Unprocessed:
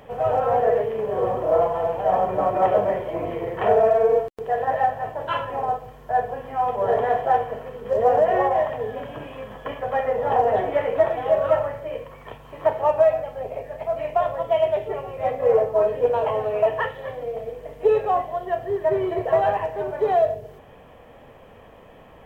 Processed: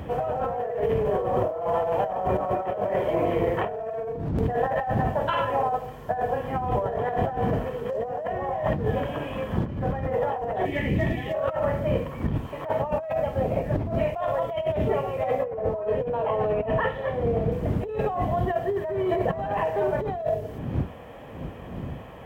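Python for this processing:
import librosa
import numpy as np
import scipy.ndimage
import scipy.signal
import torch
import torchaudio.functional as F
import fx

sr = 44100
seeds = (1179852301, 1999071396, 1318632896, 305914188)

y = fx.dmg_wind(x, sr, seeds[0], corner_hz=170.0, level_db=-29.0)
y = scipy.signal.sosfilt(scipy.signal.butter(2, 58.0, 'highpass', fs=sr, output='sos'), y)
y = fx.spec_box(y, sr, start_s=10.65, length_s=0.69, low_hz=410.0, high_hz=1700.0, gain_db=-15)
y = fx.lowpass(y, sr, hz=3000.0, slope=6, at=(15.44, 17.52))
y = fx.over_compress(y, sr, threshold_db=-26.0, ratio=-1.0)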